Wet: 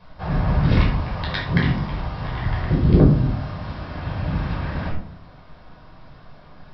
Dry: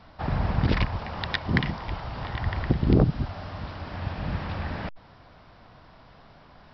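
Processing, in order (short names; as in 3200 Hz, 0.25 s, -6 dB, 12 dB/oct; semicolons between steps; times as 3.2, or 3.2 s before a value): shoebox room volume 740 m³, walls furnished, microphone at 5.3 m; gain -4 dB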